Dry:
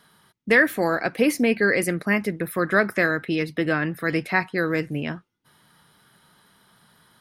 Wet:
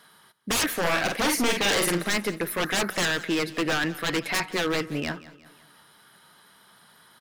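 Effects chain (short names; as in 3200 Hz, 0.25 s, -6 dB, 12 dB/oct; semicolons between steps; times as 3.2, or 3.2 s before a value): low shelf 230 Hz -12 dB; wavefolder -22.5 dBFS; 0.8–2.1 doubler 46 ms -4 dB; feedback echo 0.18 s, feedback 48%, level -18 dB; gain +3.5 dB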